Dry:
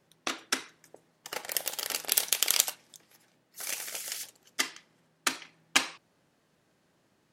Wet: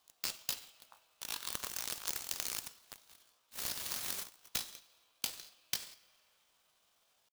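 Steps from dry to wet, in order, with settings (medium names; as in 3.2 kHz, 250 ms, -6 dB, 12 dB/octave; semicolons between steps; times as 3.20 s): rattle on loud lows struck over -44 dBFS, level -17 dBFS; peaking EQ 980 Hz -9.5 dB 0.74 oct; pitch shift +11.5 st; in parallel at -3 dB: saturation -19.5 dBFS, distortion -8 dB; on the sum: compression 16:1, threshold -31 dBFS, peak gain reduction 16 dB; amplifier tone stack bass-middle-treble 10-0-10; on a send at -16.5 dB: reverberation RT60 4.4 s, pre-delay 15 ms; on the sum: sampling jitter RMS 0.021 ms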